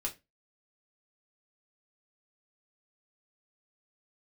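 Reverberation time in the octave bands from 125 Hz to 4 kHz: 0.30, 0.30, 0.25, 0.20, 0.20, 0.20 seconds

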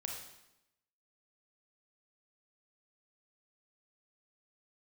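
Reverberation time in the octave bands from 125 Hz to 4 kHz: 0.90, 0.95, 0.90, 0.85, 0.85, 0.80 seconds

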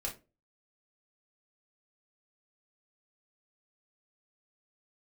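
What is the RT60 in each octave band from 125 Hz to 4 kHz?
0.40, 0.35, 0.35, 0.25, 0.20, 0.20 seconds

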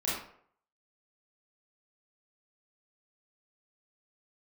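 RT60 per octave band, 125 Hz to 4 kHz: 0.55, 0.55, 0.65, 0.60, 0.50, 0.40 seconds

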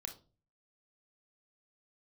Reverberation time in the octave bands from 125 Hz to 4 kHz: 0.65, 0.50, 0.40, 0.30, 0.25, 0.25 seconds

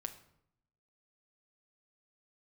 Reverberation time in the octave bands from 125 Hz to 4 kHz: 1.1, 0.95, 0.75, 0.70, 0.60, 0.50 seconds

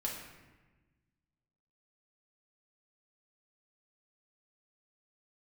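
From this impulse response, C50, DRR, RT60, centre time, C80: 3.5 dB, −2.5 dB, 1.2 s, 49 ms, 6.0 dB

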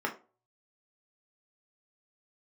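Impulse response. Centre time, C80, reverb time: 13 ms, 19.0 dB, 0.35 s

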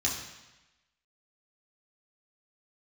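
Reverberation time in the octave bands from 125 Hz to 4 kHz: 1.0, 1.0, 1.0, 1.1, 1.1, 1.1 seconds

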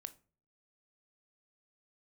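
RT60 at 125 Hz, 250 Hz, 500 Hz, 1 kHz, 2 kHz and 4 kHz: 0.65, 0.55, 0.45, 0.35, 0.30, 0.25 seconds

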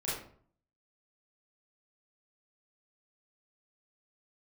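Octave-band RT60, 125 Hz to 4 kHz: 0.75, 0.65, 0.55, 0.50, 0.40, 0.35 seconds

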